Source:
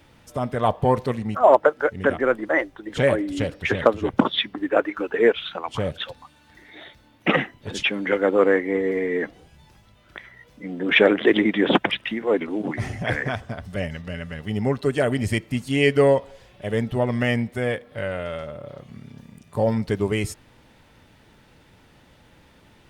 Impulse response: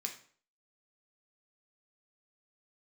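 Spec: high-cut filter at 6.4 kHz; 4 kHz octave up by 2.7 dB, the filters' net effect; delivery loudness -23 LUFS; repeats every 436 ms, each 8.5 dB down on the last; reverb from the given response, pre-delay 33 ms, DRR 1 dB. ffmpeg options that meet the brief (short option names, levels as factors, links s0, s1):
-filter_complex "[0:a]lowpass=6400,equalizer=f=4000:t=o:g=4,aecho=1:1:436|872|1308|1744:0.376|0.143|0.0543|0.0206,asplit=2[s0][s1];[1:a]atrim=start_sample=2205,adelay=33[s2];[s1][s2]afir=irnorm=-1:irlink=0,volume=0.944[s3];[s0][s3]amix=inputs=2:normalize=0,volume=0.708"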